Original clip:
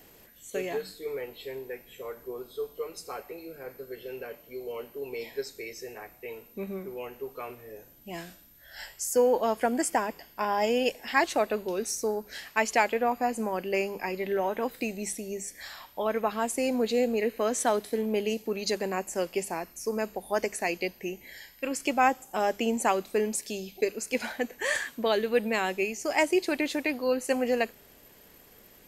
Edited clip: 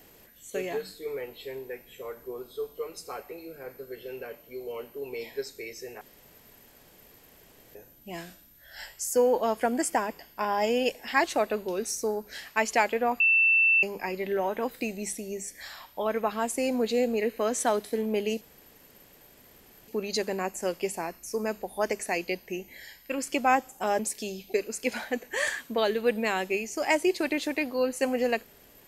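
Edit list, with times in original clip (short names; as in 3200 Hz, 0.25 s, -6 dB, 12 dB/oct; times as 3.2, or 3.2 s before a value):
6.01–7.75 room tone
13.2–13.83 bleep 2670 Hz -18 dBFS
18.41 insert room tone 1.47 s
22.52–23.27 cut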